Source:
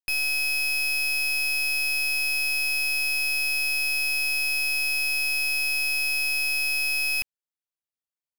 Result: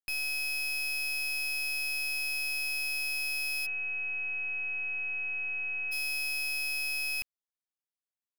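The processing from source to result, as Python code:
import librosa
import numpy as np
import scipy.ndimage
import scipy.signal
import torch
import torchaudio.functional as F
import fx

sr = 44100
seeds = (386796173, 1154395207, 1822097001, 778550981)

y = fx.brickwall_lowpass(x, sr, high_hz=3200.0, at=(3.65, 5.91), fade=0.02)
y = y * 10.0 ** (-7.5 / 20.0)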